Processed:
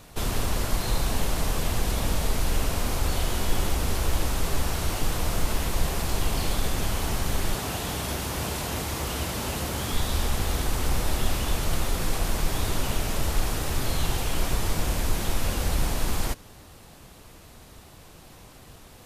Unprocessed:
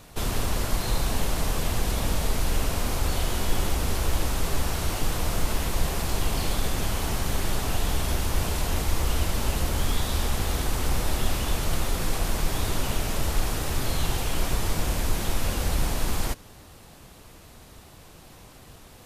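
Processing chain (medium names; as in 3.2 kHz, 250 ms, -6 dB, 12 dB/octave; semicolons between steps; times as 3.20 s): 7.54–9.93 s: high-pass 90 Hz 12 dB/octave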